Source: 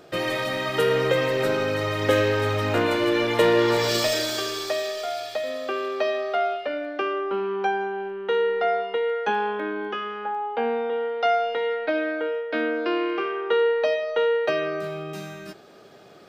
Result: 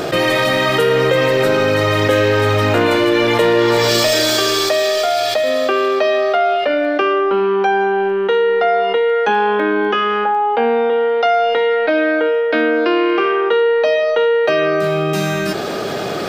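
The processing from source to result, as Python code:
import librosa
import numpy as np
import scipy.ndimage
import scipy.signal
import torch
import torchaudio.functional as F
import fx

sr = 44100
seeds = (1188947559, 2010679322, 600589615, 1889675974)

y = fx.env_flatten(x, sr, amount_pct=70)
y = y * 10.0 ** (3.5 / 20.0)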